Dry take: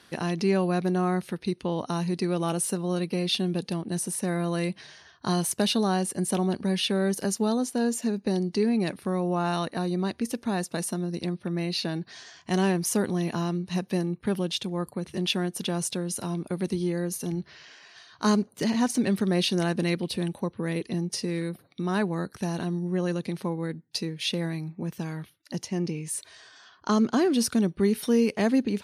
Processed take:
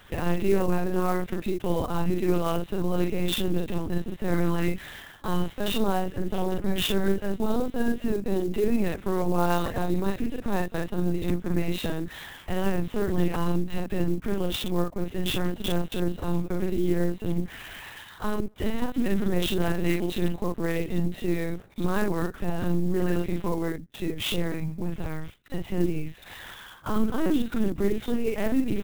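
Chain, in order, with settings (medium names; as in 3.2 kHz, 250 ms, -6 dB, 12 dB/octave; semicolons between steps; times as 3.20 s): in parallel at -2 dB: compression 6:1, threshold -37 dBFS, peak gain reduction 17.5 dB; on the sum: peak limiter -17.5 dBFS, peak gain reduction 6.5 dB; reverse; upward compressor, threshold -36 dBFS; reverse; doubling 46 ms -2 dB; LPC vocoder at 8 kHz pitch kept; sampling jitter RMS 0.025 ms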